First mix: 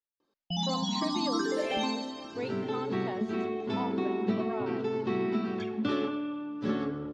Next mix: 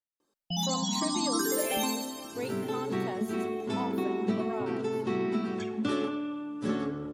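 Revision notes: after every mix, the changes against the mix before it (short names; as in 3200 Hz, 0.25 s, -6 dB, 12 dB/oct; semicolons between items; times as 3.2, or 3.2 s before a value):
master: remove LPF 5000 Hz 24 dB/oct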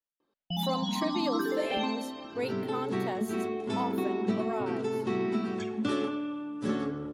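speech +3.5 dB; first sound: add LPF 3800 Hz 24 dB/oct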